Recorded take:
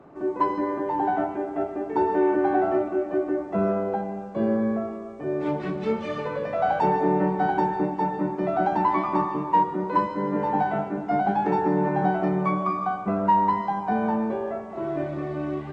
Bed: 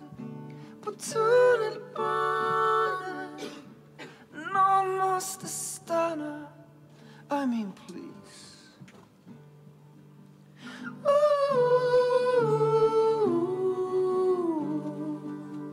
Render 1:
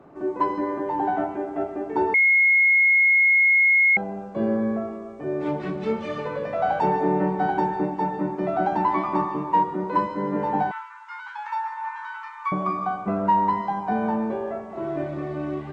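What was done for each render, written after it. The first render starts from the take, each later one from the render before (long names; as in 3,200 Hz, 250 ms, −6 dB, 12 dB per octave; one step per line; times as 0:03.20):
0:02.14–0:03.97: beep over 2,160 Hz −14 dBFS
0:10.71–0:12.52: linear-phase brick-wall high-pass 850 Hz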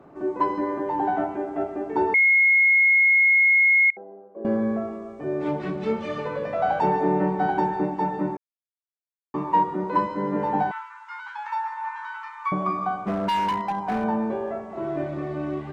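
0:03.90–0:04.45: four-pole ladder band-pass 480 Hz, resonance 45%
0:08.37–0:09.34: silence
0:13.01–0:14.04: hard clipping −21 dBFS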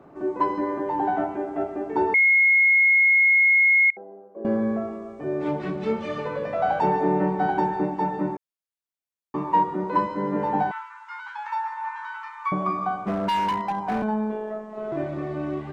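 0:14.02–0:14.92: phases set to zero 215 Hz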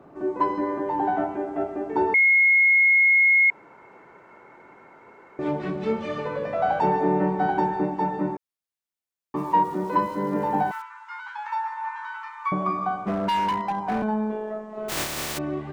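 0:03.50–0:05.39: fill with room tone
0:09.36–0:10.82: centre clipping without the shift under −44.5 dBFS
0:14.88–0:15.37: compressing power law on the bin magnitudes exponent 0.19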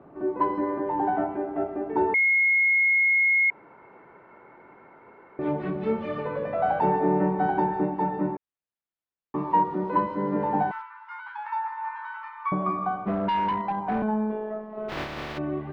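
high-frequency loss of the air 330 metres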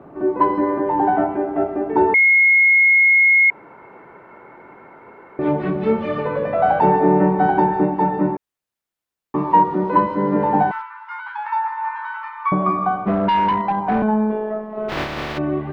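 level +8 dB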